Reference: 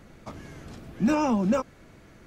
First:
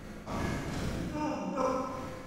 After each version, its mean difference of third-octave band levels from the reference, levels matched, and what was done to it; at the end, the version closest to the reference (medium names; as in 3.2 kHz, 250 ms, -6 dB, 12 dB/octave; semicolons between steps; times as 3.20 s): 12.5 dB: compressor with a negative ratio -30 dBFS, ratio -0.5; tremolo 2.5 Hz, depth 72%; Schroeder reverb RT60 1.6 s, combs from 33 ms, DRR -5.5 dB; attacks held to a fixed rise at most 200 dB/s; trim -2.5 dB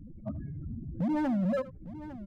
9.0 dB: spectral contrast enhancement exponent 4; compression 8:1, threshold -28 dBFS, peak gain reduction 8.5 dB; overload inside the chain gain 31.5 dB; multi-tap echo 81/854 ms -18/-14.5 dB; trim +5 dB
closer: second